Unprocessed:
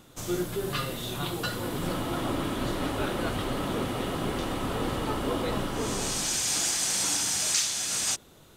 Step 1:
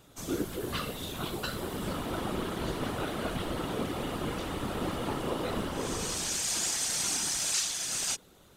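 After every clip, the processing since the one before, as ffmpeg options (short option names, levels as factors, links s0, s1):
-af "afftfilt=real='hypot(re,im)*cos(2*PI*random(0))':imag='hypot(re,im)*sin(2*PI*random(1))':win_size=512:overlap=0.75,volume=1.33"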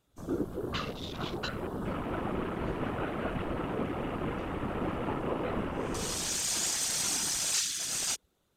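-af "afwtdn=0.00794"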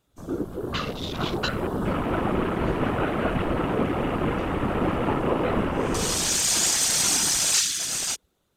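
-af "dynaudnorm=f=100:g=17:m=2,volume=1.41"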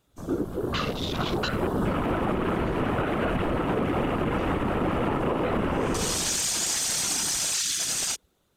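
-af "alimiter=limit=0.112:level=0:latency=1:release=62,volume=1.26"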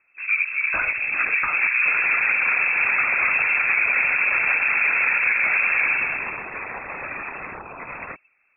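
-af "lowpass=f=2300:t=q:w=0.5098,lowpass=f=2300:t=q:w=0.6013,lowpass=f=2300:t=q:w=0.9,lowpass=f=2300:t=q:w=2.563,afreqshift=-2700,volume=1.88"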